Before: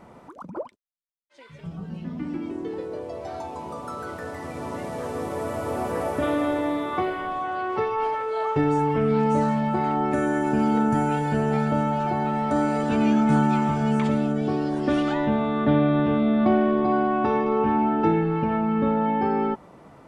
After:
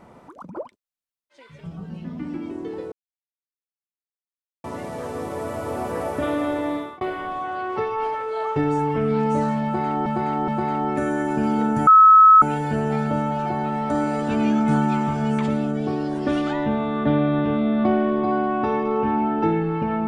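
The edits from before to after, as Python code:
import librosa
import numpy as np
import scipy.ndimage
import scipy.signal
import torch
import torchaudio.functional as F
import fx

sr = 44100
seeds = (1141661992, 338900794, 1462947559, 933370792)

y = fx.edit(x, sr, fx.silence(start_s=2.92, length_s=1.72),
    fx.fade_out_span(start_s=6.76, length_s=0.25),
    fx.repeat(start_s=9.64, length_s=0.42, count=3),
    fx.insert_tone(at_s=11.03, length_s=0.55, hz=1290.0, db=-7.0), tone=tone)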